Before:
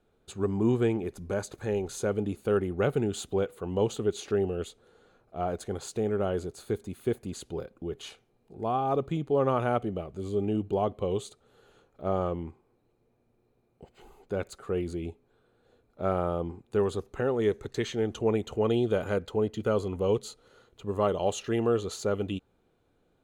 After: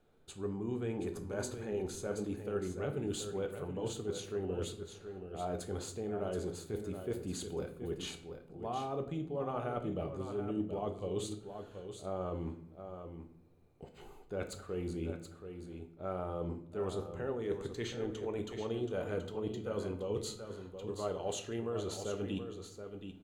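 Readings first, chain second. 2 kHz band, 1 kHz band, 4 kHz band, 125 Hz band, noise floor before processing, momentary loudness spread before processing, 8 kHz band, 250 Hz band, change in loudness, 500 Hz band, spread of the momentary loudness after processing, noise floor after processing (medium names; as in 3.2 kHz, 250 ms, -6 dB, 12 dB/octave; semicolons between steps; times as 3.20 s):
-8.5 dB, -10.0 dB, -4.5 dB, -8.0 dB, -70 dBFS, 10 LU, -3.0 dB, -8.0 dB, -9.5 dB, -9.0 dB, 10 LU, -56 dBFS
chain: reverse; compression 6:1, threshold -35 dBFS, peak gain reduction 14 dB; reverse; delay 727 ms -8.5 dB; simulated room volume 100 m³, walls mixed, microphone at 0.41 m; trim -1 dB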